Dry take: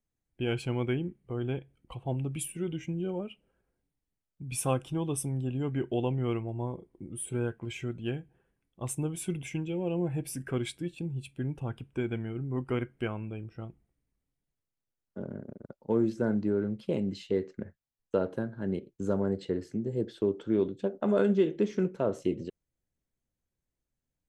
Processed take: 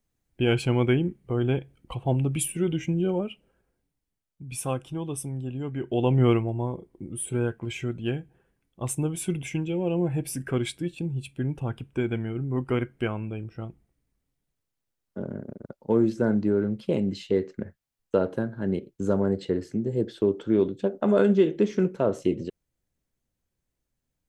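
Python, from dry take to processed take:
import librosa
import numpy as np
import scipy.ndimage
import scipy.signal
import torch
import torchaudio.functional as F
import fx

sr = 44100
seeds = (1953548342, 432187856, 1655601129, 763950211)

y = fx.gain(x, sr, db=fx.line((3.11, 8.0), (4.55, -0.5), (5.79, -0.5), (6.22, 11.5), (6.63, 5.0)))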